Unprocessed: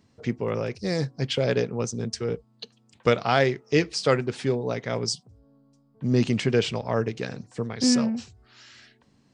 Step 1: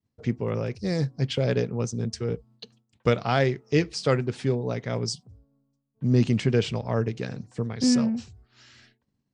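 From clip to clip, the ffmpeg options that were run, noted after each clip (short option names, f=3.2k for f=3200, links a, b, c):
-af "agate=range=-33dB:threshold=-50dB:ratio=3:detection=peak,lowshelf=f=210:g=9,volume=-3.5dB"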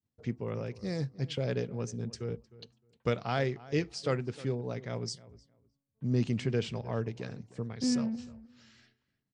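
-filter_complex "[0:a]asplit=2[a][b];[b]adelay=308,lowpass=f=2.2k:p=1,volume=-18.5dB,asplit=2[c][d];[d]adelay=308,lowpass=f=2.2k:p=1,volume=0.18[e];[a][c][e]amix=inputs=3:normalize=0,volume=-8dB"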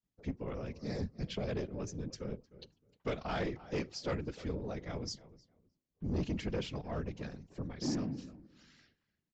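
-af "afftfilt=real='hypot(re,im)*cos(2*PI*random(0))':imag='hypot(re,im)*sin(2*PI*random(1))':win_size=512:overlap=0.75,aresample=16000,asoftclip=type=tanh:threshold=-31dB,aresample=44100,volume=3dB"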